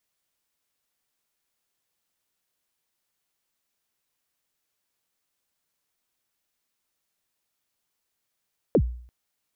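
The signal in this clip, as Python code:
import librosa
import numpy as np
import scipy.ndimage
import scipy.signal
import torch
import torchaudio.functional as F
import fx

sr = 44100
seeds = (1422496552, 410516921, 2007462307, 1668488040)

y = fx.drum_kick(sr, seeds[0], length_s=0.34, level_db=-13, start_hz=580.0, end_hz=60.0, sweep_ms=67.0, decay_s=0.55, click=False)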